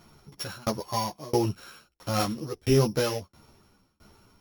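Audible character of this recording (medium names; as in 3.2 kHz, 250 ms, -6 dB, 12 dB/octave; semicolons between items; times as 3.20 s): a buzz of ramps at a fixed pitch in blocks of 8 samples; tremolo saw down 1.5 Hz, depth 100%; a shimmering, thickened sound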